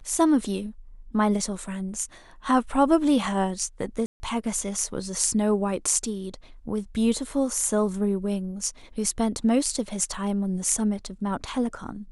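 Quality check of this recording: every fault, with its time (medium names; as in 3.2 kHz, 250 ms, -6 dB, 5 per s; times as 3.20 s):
4.06–4.20 s: dropout 140 ms
10.14 s: dropout 2.9 ms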